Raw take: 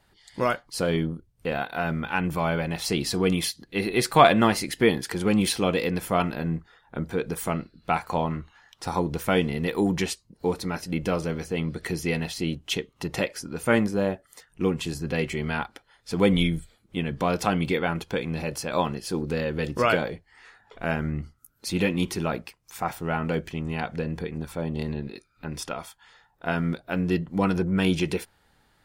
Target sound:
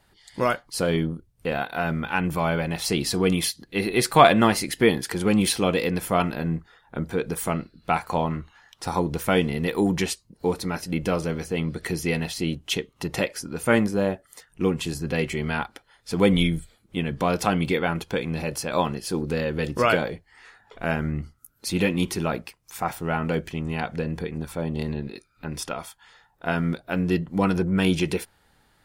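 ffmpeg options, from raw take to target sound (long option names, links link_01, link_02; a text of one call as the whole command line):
ffmpeg -i in.wav -af "equalizer=frequency=11000:width=1.2:gain=3,volume=1.5dB" out.wav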